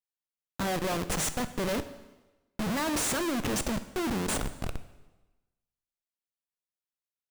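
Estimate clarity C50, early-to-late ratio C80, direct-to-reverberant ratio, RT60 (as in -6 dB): 13.5 dB, 15.0 dB, 11.5 dB, 1.1 s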